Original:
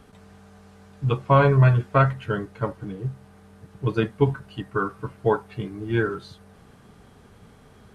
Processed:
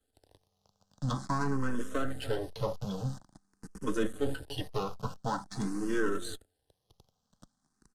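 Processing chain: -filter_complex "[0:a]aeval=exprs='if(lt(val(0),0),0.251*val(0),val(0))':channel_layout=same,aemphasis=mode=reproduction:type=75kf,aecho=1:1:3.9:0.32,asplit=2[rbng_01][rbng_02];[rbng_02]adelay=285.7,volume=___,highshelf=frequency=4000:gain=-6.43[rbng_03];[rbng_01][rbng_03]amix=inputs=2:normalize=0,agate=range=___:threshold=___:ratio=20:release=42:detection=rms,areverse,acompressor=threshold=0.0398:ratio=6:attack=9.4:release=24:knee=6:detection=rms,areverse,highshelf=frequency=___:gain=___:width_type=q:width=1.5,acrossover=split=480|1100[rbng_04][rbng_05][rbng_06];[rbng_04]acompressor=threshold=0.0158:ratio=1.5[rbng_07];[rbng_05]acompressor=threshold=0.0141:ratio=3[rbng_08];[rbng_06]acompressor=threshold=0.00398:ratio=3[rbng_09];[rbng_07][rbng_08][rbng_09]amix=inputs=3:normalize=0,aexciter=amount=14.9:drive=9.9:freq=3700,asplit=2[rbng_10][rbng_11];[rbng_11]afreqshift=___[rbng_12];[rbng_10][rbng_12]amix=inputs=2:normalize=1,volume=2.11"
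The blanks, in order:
0.0501, 0.0316, 0.00398, 2700, -8.5, 0.47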